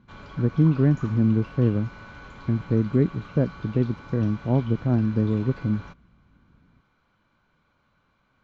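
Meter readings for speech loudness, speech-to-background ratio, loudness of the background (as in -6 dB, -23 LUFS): -24.0 LUFS, 19.5 dB, -43.5 LUFS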